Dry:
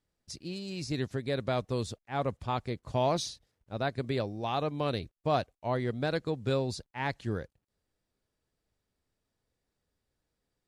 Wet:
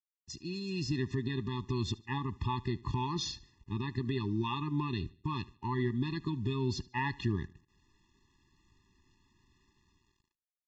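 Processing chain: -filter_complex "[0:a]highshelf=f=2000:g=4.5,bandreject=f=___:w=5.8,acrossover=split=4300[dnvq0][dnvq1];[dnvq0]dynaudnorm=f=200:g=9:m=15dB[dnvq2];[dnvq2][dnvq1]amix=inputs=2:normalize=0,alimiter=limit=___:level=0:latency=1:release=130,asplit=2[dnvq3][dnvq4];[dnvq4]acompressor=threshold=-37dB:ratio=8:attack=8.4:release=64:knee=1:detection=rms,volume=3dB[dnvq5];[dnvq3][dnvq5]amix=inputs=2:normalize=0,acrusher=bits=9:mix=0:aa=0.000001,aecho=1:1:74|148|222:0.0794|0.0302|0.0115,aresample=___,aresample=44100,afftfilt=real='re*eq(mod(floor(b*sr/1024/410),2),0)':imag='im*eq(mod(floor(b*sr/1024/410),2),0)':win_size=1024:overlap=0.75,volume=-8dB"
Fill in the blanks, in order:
1500, -14.5dB, 16000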